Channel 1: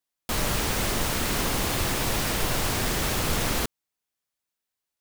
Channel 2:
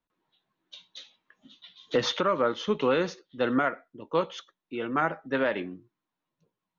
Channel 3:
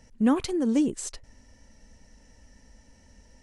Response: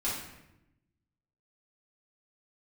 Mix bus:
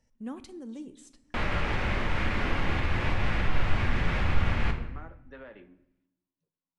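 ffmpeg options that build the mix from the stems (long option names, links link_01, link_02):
-filter_complex "[0:a]asubboost=boost=3:cutoff=180,lowpass=frequency=2200:width_type=q:width=1.6,adelay=1050,volume=2dB,asplit=2[link_01][link_02];[link_02]volume=-18.5dB[link_03];[1:a]acrossover=split=580|3000[link_04][link_05][link_06];[link_04]acompressor=threshold=-32dB:ratio=4[link_07];[link_05]acompressor=threshold=-32dB:ratio=4[link_08];[link_06]acompressor=threshold=-59dB:ratio=4[link_09];[link_07][link_08][link_09]amix=inputs=3:normalize=0,volume=-12dB,asplit=3[link_10][link_11][link_12];[link_11]volume=-22.5dB[link_13];[2:a]volume=-17.5dB,asplit=2[link_14][link_15];[link_15]volume=-18.5dB[link_16];[link_12]apad=whole_len=151075[link_17];[link_14][link_17]sidechaincompress=threshold=-59dB:ratio=8:attack=16:release=1280[link_18];[link_01][link_10]amix=inputs=2:normalize=0,flanger=delay=8.9:depth=2.6:regen=-69:speed=0.37:shape=triangular,alimiter=limit=-21dB:level=0:latency=1:release=284,volume=0dB[link_19];[3:a]atrim=start_sample=2205[link_20];[link_03][link_13][link_16]amix=inputs=3:normalize=0[link_21];[link_21][link_20]afir=irnorm=-1:irlink=0[link_22];[link_18][link_19][link_22]amix=inputs=3:normalize=0"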